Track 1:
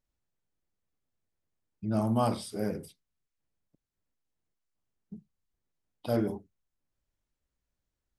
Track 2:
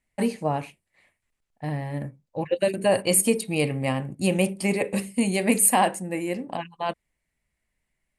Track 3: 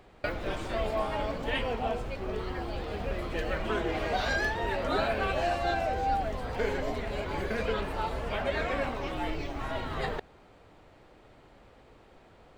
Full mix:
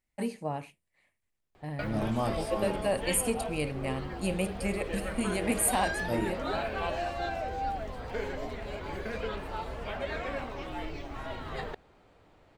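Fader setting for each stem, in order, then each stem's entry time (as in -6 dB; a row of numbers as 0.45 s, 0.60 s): -3.5 dB, -8.5 dB, -4.5 dB; 0.00 s, 0.00 s, 1.55 s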